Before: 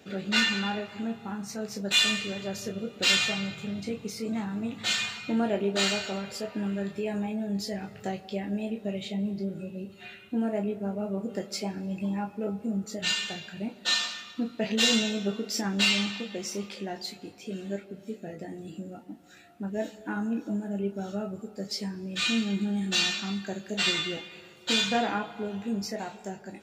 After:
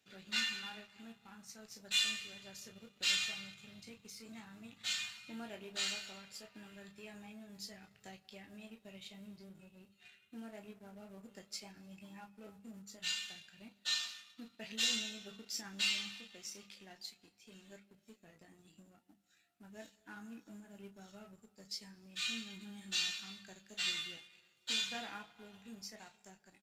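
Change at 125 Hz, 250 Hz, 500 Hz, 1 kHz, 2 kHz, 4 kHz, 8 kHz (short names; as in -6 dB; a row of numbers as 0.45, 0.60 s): -22.0, -21.5, -22.5, -18.0, -11.5, -9.5, -8.5 dB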